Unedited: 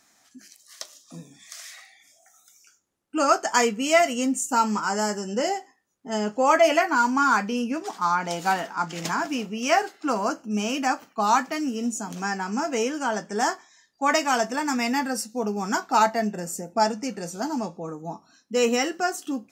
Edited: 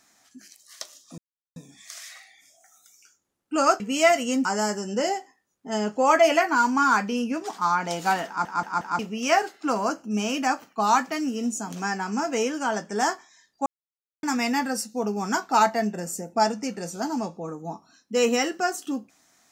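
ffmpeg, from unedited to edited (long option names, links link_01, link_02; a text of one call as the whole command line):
ffmpeg -i in.wav -filter_complex "[0:a]asplit=10[link_01][link_02][link_03][link_04][link_05][link_06][link_07][link_08][link_09][link_10];[link_01]atrim=end=1.18,asetpts=PTS-STARTPTS,afade=type=out:start_time=1.176:duration=0.004:curve=hsin,apad=pad_dur=0.38[link_11];[link_02]atrim=start=1.18:end=3.422,asetpts=PTS-STARTPTS,afade=type=in:duration=0.004:curve=hsin[link_12];[link_03]atrim=start=3.698:end=4.352[link_13];[link_04]atrim=start=4.848:end=8.852[link_14];[link_05]atrim=start=8.668:end=8.852[link_15];[link_06]atrim=start=8.668:end=8.852[link_16];[link_07]atrim=start=8.668:end=8.852[link_17];[link_08]atrim=start=9.388:end=14.06,asetpts=PTS-STARTPTS,afade=type=out:start_time=4.668:duration=0.004:curve=hsin[link_18];[link_09]atrim=start=14.06:end=14.63,asetpts=PTS-STARTPTS,volume=0[link_19];[link_10]atrim=start=14.63,asetpts=PTS-STARTPTS,afade=type=in:duration=0.004:curve=hsin[link_20];[link_11][link_12]concat=n=2:v=0:a=1[link_21];[link_21][link_13]acrossfade=duration=0.004:curve1=hsin:curve2=hsin[link_22];[link_22][link_14]acrossfade=duration=0.004:curve1=hsin:curve2=hsin[link_23];[link_23][link_15]acrossfade=duration=0.004:curve1=hsin:curve2=hsin[link_24];[link_24][link_16]acrossfade=duration=0.004:curve1=hsin:curve2=hsin[link_25];[link_25][link_17]acrossfade=duration=0.004:curve1=hsin:curve2=hsin[link_26];[link_18][link_19][link_20]concat=n=3:v=0:a=1[link_27];[link_26][link_27]acrossfade=duration=0.004:curve1=hsin:curve2=hsin" out.wav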